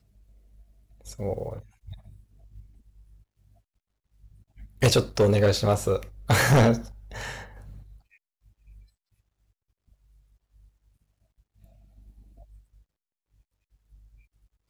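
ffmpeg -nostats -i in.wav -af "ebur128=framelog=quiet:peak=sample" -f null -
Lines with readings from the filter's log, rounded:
Integrated loudness:
  I:         -23.8 LUFS
  Threshold: -39.5 LUFS
Loudness range:
  LRA:        19.5 LU
  Threshold: -49.3 LUFS
  LRA low:   -43.0 LUFS
  LRA high:  -23.5 LUFS
Sample peak:
  Peak:      -13.9 dBFS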